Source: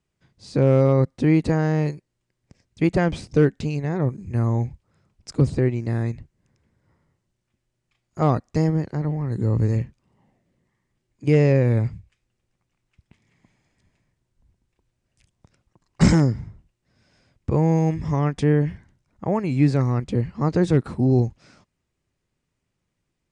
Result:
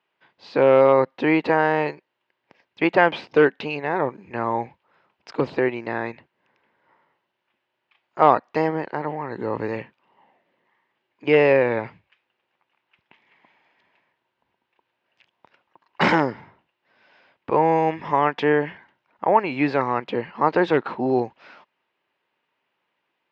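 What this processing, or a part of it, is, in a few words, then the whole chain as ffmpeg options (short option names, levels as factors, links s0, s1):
phone earpiece: -af "highpass=500,equalizer=f=920:t=q:w=4:g=7,equalizer=f=1600:t=q:w=4:g=3,equalizer=f=2800:t=q:w=4:g=4,lowpass=f=3600:w=0.5412,lowpass=f=3600:w=1.3066,volume=2.37"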